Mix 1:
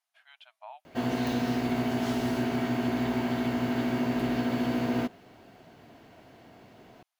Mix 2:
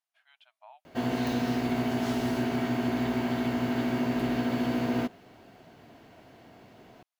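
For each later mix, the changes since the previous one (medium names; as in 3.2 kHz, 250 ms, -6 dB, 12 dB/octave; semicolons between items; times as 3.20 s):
speech -6.5 dB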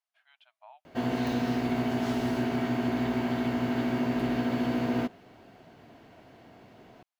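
master: add treble shelf 5.3 kHz -5 dB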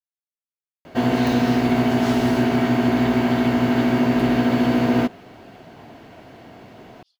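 speech: entry +2.70 s; background +10.0 dB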